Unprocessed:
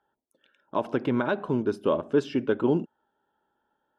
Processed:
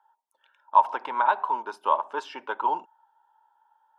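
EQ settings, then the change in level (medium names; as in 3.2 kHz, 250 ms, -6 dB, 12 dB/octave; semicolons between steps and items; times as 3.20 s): resonant high-pass 920 Hz, resonance Q 10; -1.5 dB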